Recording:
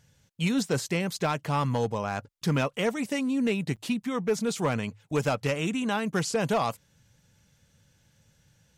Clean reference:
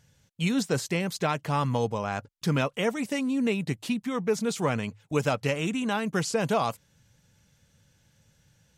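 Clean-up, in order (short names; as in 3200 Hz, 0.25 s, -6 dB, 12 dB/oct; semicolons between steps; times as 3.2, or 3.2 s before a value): clip repair -18.5 dBFS; interpolate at 3.76, 7.1 ms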